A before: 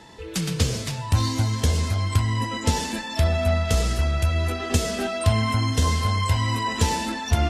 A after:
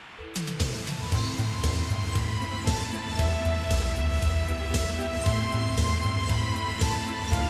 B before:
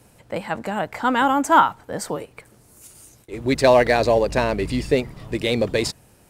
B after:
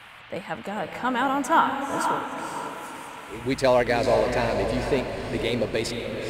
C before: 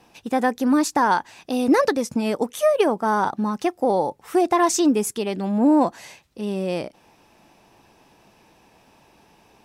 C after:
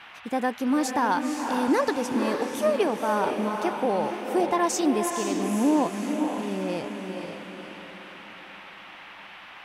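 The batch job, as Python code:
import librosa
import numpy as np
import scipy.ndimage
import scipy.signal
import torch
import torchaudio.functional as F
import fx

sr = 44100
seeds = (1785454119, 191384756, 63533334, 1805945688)

y = fx.dmg_noise_band(x, sr, seeds[0], low_hz=650.0, high_hz=3000.0, level_db=-41.0)
y = fx.echo_diffused(y, sr, ms=501, feedback_pct=45, wet_db=-5.0)
y = y * librosa.db_to_amplitude(-5.5)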